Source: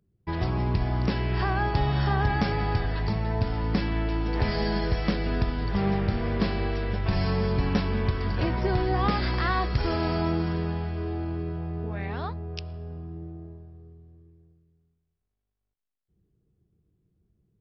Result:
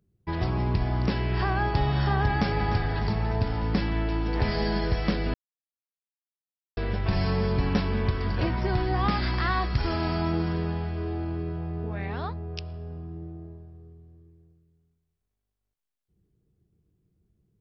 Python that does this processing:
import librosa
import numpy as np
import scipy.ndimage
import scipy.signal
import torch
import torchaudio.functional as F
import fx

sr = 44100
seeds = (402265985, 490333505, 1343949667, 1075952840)

y = fx.echo_throw(x, sr, start_s=2.26, length_s=0.46, ms=300, feedback_pct=65, wet_db=-9.5)
y = fx.peak_eq(y, sr, hz=480.0, db=-7.5, octaves=0.51, at=(8.47, 10.34))
y = fx.edit(y, sr, fx.silence(start_s=5.34, length_s=1.43), tone=tone)